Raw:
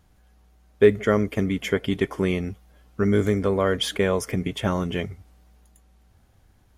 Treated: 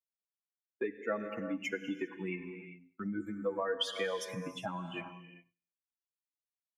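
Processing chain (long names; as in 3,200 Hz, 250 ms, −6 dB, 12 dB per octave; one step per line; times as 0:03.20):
spectral dynamics exaggerated over time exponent 3
high-pass filter 94 Hz
parametric band 250 Hz +6.5 dB 0.28 octaves
repeating echo 98 ms, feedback 52%, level −23 dB
noise gate −49 dBFS, range −13 dB
reverb whose tail is shaped and stops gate 430 ms flat, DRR 10 dB
downward compressor 3 to 1, threshold −33 dBFS, peak gain reduction 15.5 dB
three-way crossover with the lows and the highs turned down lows −15 dB, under 230 Hz, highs −13 dB, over 7,000 Hz
comb filter 6.1 ms, depth 55%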